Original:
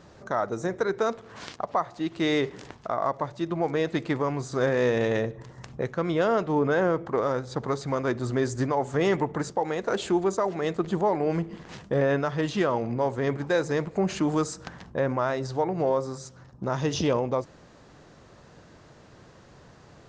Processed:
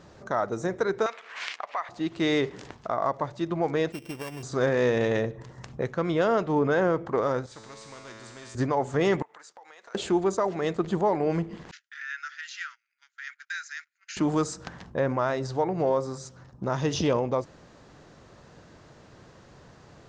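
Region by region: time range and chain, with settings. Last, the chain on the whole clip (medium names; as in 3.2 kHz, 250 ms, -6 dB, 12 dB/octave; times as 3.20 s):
1.06–1.89 s: peaking EQ 2.3 kHz +13.5 dB 1.2 oct + compression 2:1, threshold -28 dBFS + high-pass 750 Hz
3.92–4.43 s: sorted samples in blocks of 16 samples + gate -28 dBFS, range -7 dB + compression, threshold -32 dBFS
7.46–8.55 s: band-stop 750 Hz, Q 7.6 + feedback comb 110 Hz, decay 1.3 s, mix 90% + spectrum-flattening compressor 2:1
9.22–9.95 s: gate -43 dBFS, range -9 dB + high-pass 1.1 kHz + compression 5:1, threshold -47 dBFS
11.71–14.17 s: Chebyshev band-pass 1.4–7.1 kHz, order 5 + dynamic bell 3.3 kHz, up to -7 dB, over -54 dBFS, Q 2.7 + gate -50 dBFS, range -24 dB
whole clip: none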